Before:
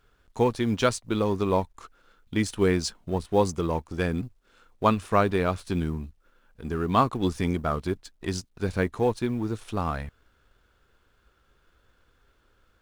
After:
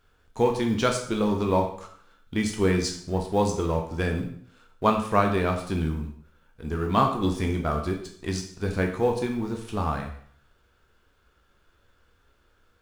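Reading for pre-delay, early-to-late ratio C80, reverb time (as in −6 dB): 5 ms, 10.5 dB, 0.60 s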